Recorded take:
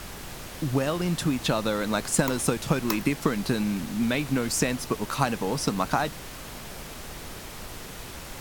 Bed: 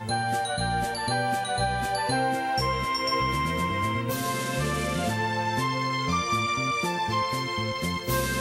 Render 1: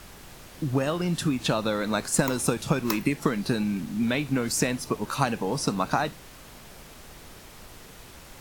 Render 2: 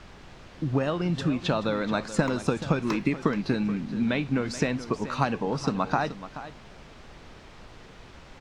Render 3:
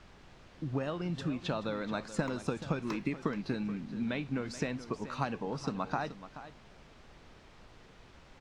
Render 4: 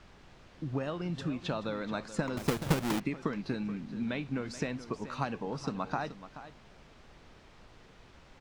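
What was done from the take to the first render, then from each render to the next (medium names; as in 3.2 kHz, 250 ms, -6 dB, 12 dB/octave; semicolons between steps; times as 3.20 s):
noise print and reduce 7 dB
distance through air 140 m; delay 429 ms -13.5 dB
trim -8.5 dB
2.37–3.00 s: square wave that keeps the level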